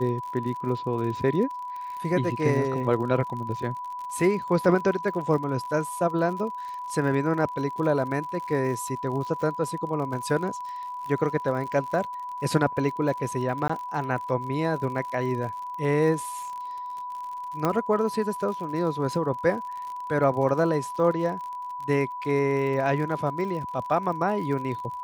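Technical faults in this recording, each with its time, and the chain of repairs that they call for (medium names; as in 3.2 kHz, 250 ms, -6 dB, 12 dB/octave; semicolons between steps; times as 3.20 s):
crackle 58 per s -34 dBFS
whine 990 Hz -32 dBFS
13.68–13.70 s: dropout 15 ms
17.65 s: pop -12 dBFS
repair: de-click; band-stop 990 Hz, Q 30; interpolate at 13.68 s, 15 ms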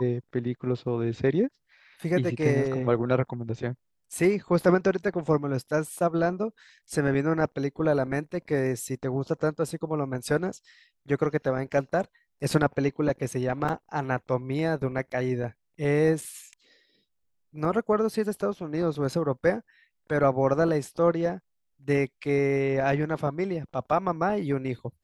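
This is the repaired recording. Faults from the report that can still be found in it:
17.65 s: pop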